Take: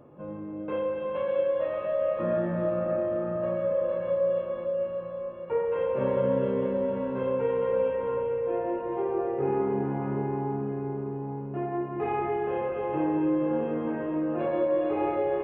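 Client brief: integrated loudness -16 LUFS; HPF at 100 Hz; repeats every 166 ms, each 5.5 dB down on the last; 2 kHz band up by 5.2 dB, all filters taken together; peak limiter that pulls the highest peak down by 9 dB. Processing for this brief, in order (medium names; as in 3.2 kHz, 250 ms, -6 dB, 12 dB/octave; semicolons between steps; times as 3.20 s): high-pass 100 Hz; peaking EQ 2 kHz +6.5 dB; peak limiter -24 dBFS; feedback delay 166 ms, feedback 53%, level -5.5 dB; trim +14 dB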